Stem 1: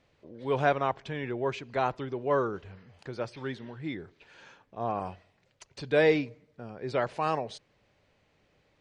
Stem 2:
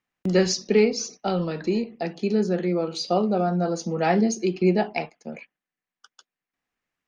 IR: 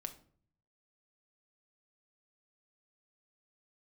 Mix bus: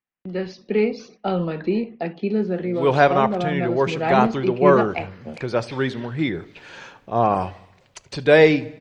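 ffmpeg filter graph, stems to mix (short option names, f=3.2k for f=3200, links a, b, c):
-filter_complex "[0:a]adelay=2350,volume=-0.5dB,asplit=3[a][b][c];[b]volume=-7dB[d];[c]volume=-20.5dB[e];[1:a]lowpass=f=3.5k:w=0.5412,lowpass=f=3.5k:w=1.3066,volume=-10.5dB,asplit=2[f][g];[g]volume=-13dB[h];[2:a]atrim=start_sample=2205[i];[d][h]amix=inputs=2:normalize=0[j];[j][i]afir=irnorm=-1:irlink=0[k];[e]aecho=0:1:76|152|228|304|380|456|532|608|684:1|0.57|0.325|0.185|0.106|0.0602|0.0343|0.0195|0.0111[l];[a][f][k][l]amix=inputs=4:normalize=0,dynaudnorm=f=300:g=5:m=11.5dB"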